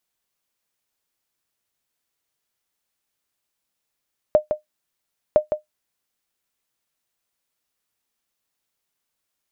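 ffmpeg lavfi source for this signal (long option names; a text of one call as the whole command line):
ffmpeg -f lavfi -i "aevalsrc='0.531*(sin(2*PI*609*mod(t,1.01))*exp(-6.91*mod(t,1.01)/0.13)+0.422*sin(2*PI*609*max(mod(t,1.01)-0.16,0))*exp(-6.91*max(mod(t,1.01)-0.16,0)/0.13))':duration=2.02:sample_rate=44100" out.wav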